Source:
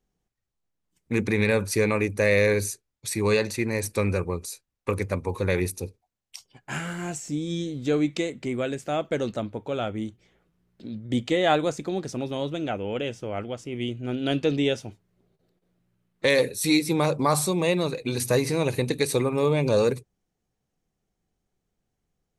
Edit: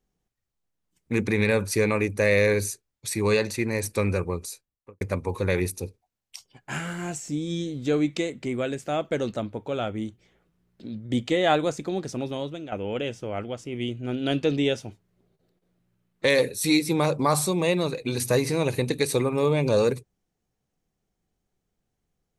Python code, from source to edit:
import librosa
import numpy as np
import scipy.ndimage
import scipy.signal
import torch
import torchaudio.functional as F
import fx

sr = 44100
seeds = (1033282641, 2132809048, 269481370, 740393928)

y = fx.studio_fade_out(x, sr, start_s=4.46, length_s=0.55)
y = fx.edit(y, sr, fx.fade_out_to(start_s=12.28, length_s=0.44, floor_db=-11.5), tone=tone)